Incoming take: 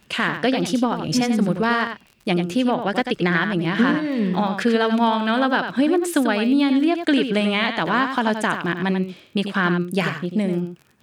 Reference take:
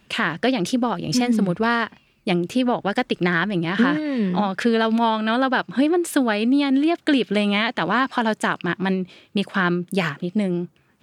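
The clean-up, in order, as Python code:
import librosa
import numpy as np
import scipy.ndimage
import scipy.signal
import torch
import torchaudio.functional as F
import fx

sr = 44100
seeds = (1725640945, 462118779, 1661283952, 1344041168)

y = fx.fix_declick_ar(x, sr, threshold=6.5)
y = fx.fix_echo_inverse(y, sr, delay_ms=91, level_db=-8.0)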